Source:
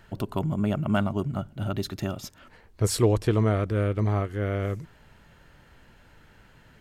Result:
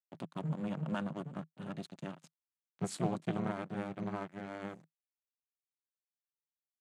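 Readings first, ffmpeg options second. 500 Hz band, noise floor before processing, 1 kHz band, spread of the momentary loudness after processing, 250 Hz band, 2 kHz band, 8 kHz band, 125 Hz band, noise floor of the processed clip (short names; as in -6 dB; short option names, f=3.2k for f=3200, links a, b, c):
-14.5 dB, -56 dBFS, -9.0 dB, 10 LU, -10.0 dB, -10.5 dB, -15.0 dB, -16.0 dB, under -85 dBFS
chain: -af "aeval=exprs='sgn(val(0))*max(abs(val(0))-0.0133,0)':c=same,tremolo=f=300:d=0.974,highpass=f=150:w=0.5412,highpass=f=150:w=1.3066,equalizer=f=160:t=q:w=4:g=10,equalizer=f=440:t=q:w=4:g=-9,equalizer=f=5.3k:t=q:w=4:g=-6,lowpass=f=9.6k:w=0.5412,lowpass=f=9.6k:w=1.3066,volume=-6dB"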